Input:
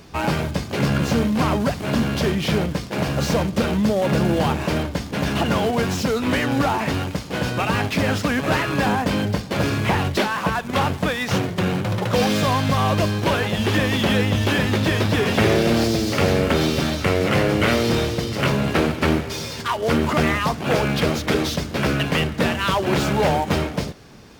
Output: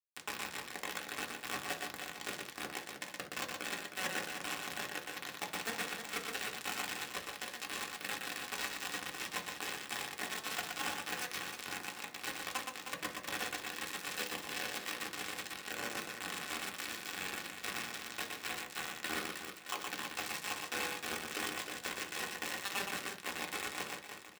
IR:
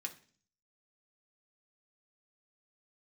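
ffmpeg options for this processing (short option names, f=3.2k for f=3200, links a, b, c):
-filter_complex "[0:a]acrossover=split=360 2600:gain=0.0708 1 0.0794[a][b][c];[a][b][c]amix=inputs=3:normalize=0,bandreject=f=60:t=h:w=6,bandreject=f=120:t=h:w=6,bandreject=f=180:t=h:w=6,bandreject=f=240:t=h:w=6,bandreject=f=300:t=h:w=6,bandreject=f=360:t=h:w=6,bandreject=f=420:t=h:w=6,areverse,acompressor=threshold=-32dB:ratio=6,areverse,flanger=delay=15:depth=5.6:speed=0.31,acrusher=bits=4:mix=0:aa=0.000001,aecho=1:1:120|312|619.2|1111|1897:0.631|0.398|0.251|0.158|0.1[d];[1:a]atrim=start_sample=2205,afade=t=out:st=0.14:d=0.01,atrim=end_sample=6615[e];[d][e]afir=irnorm=-1:irlink=0,volume=1.5dB"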